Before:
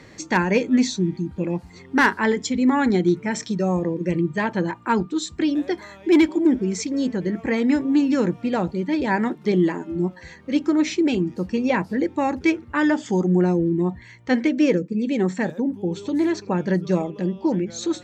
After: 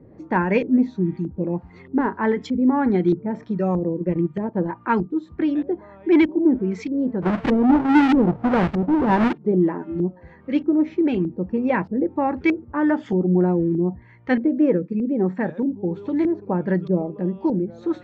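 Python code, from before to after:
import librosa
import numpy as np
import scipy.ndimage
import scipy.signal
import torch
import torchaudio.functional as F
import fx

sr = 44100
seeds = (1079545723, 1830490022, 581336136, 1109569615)

y = fx.halfwave_hold(x, sr, at=(7.22, 9.33))
y = fx.filter_lfo_lowpass(y, sr, shape='saw_up', hz=1.6, low_hz=400.0, high_hz=2800.0, q=0.93)
y = fx.transient(y, sr, attack_db=1, sustain_db=-8, at=(4.03, 4.69))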